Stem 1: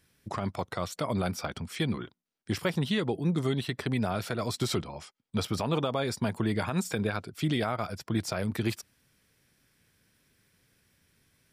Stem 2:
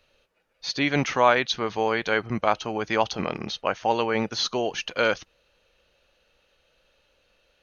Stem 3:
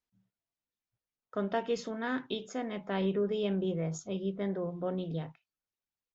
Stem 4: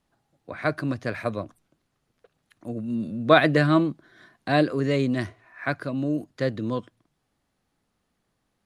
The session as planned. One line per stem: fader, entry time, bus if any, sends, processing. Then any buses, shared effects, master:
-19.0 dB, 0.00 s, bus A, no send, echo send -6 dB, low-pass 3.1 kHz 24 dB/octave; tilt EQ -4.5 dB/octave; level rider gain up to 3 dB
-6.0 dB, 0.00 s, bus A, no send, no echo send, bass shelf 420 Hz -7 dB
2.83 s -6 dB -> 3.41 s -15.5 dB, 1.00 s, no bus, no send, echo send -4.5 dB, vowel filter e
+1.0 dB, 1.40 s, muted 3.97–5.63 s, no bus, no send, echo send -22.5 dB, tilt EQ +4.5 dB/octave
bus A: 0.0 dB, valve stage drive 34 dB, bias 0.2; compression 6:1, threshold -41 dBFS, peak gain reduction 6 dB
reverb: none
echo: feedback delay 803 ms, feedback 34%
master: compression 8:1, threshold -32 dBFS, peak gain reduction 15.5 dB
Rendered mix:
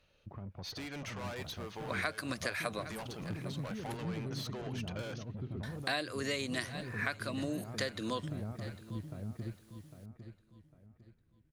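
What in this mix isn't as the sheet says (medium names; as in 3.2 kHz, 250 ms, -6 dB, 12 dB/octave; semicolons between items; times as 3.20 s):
stem 2: missing bass shelf 420 Hz -7 dB; stem 3: muted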